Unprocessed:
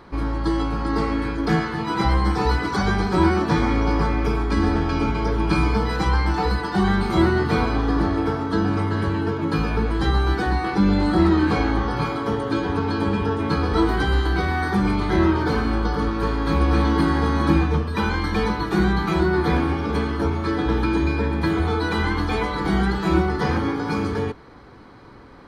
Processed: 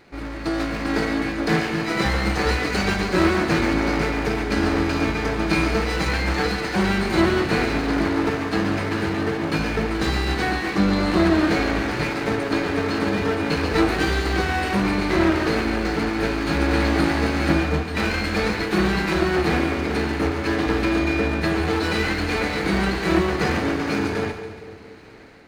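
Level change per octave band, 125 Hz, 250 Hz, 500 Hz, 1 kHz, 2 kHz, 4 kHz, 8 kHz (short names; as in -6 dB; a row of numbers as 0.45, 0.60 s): -3.5 dB, -0.5 dB, +1.0 dB, -2.0 dB, +4.0 dB, +4.0 dB, n/a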